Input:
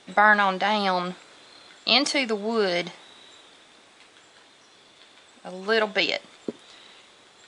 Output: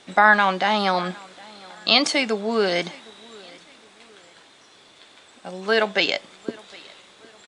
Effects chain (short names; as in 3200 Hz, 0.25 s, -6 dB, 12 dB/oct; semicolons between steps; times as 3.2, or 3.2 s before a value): feedback echo 0.76 s, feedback 39%, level -24 dB; gain +2.5 dB